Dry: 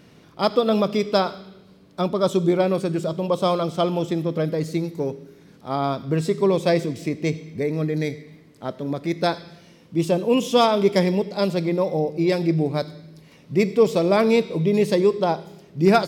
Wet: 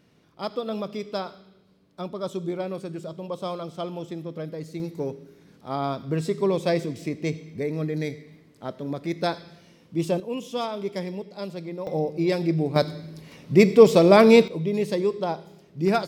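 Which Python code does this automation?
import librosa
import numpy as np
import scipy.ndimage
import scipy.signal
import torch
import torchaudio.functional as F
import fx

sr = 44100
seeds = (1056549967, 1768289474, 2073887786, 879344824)

y = fx.gain(x, sr, db=fx.steps((0.0, -10.5), (4.8, -4.0), (10.2, -12.0), (11.87, -3.0), (12.76, 4.0), (14.48, -6.0)))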